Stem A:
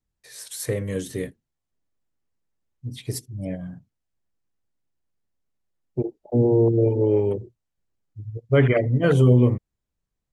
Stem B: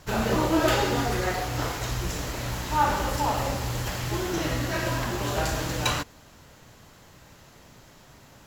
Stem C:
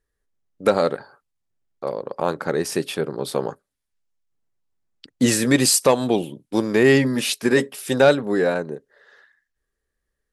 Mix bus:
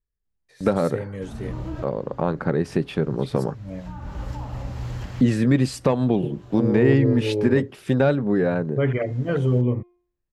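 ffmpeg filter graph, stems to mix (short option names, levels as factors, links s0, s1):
-filter_complex "[0:a]bandreject=f=352.8:t=h:w=4,bandreject=f=705.6:t=h:w=4,bandreject=f=1058.4:t=h:w=4,bandreject=f=1411.2:t=h:w=4,bandreject=f=1764:t=h:w=4,bandreject=f=2116.8:t=h:w=4,bandreject=f=2469.6:t=h:w=4,bandreject=f=2822.4:t=h:w=4,bandreject=f=3175.2:t=h:w=4,bandreject=f=3528:t=h:w=4,bandreject=f=3880.8:t=h:w=4,bandreject=f=4233.6:t=h:w=4,bandreject=f=4586.4:t=h:w=4,bandreject=f=4939.2:t=h:w=4,bandreject=f=5292:t=h:w=4,bandreject=f=5644.8:t=h:w=4,bandreject=f=5997.6:t=h:w=4,bandreject=f=6350.4:t=h:w=4,adelay=250,volume=0.562[s0];[1:a]acrossover=split=200[s1][s2];[s2]acompressor=threshold=0.01:ratio=6[s3];[s1][s3]amix=inputs=2:normalize=0,adelay=1150,volume=1.12[s4];[2:a]agate=range=0.141:threshold=0.00398:ratio=16:detection=peak,bass=f=250:g=13,treble=f=4000:g=-7,acompressor=threshold=0.112:ratio=2,volume=0.944,asplit=2[s5][s6];[s6]apad=whole_len=424032[s7];[s4][s7]sidechaincompress=threshold=0.02:ratio=10:attack=5.7:release=557[s8];[s0][s8][s5]amix=inputs=3:normalize=0,aemphasis=mode=reproduction:type=50fm"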